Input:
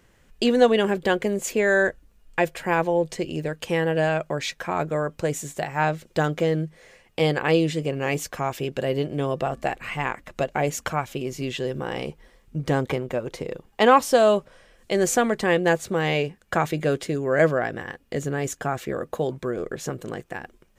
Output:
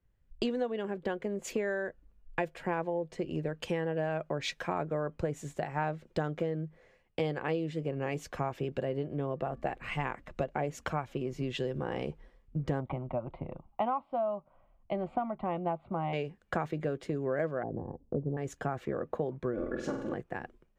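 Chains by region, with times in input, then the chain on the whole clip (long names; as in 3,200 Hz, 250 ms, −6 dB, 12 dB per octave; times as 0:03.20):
0:12.80–0:16.13: low-pass filter 2,200 Hz + parametric band 610 Hz +8 dB 1.3 octaves + phaser with its sweep stopped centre 1,700 Hz, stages 6
0:17.63–0:18.37: Chebyshev low-pass filter 930 Hz, order 4 + tilt shelving filter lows +5 dB, about 730 Hz
0:19.53–0:20.14: high-frequency loss of the air 51 metres + comb filter 3.5 ms, depth 70% + flutter between parallel walls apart 8.2 metres, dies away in 0.63 s
whole clip: low-pass filter 1,400 Hz 6 dB per octave; downward compressor 12 to 1, threshold −29 dBFS; multiband upward and downward expander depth 70%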